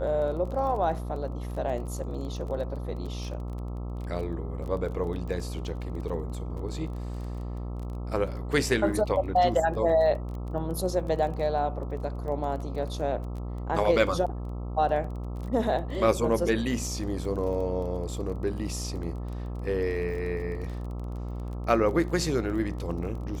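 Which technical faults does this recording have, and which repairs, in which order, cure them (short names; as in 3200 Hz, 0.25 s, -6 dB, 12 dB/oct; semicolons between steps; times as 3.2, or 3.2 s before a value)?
buzz 60 Hz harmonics 22 -34 dBFS
crackle 23/s -36 dBFS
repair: de-click; de-hum 60 Hz, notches 22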